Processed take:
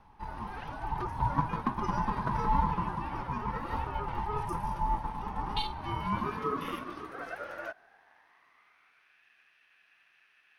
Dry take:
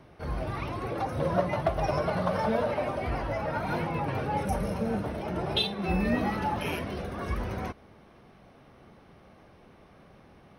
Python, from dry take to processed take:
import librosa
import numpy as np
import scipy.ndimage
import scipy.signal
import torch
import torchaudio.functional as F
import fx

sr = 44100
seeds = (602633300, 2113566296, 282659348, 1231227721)

y = fx.filter_sweep_highpass(x, sr, from_hz=450.0, to_hz=2100.0, start_s=5.65, end_s=9.24, q=6.3)
y = y * np.sin(2.0 * np.pi * 420.0 * np.arange(len(y)) / sr)
y = y * librosa.db_to_amplitude(-6.0)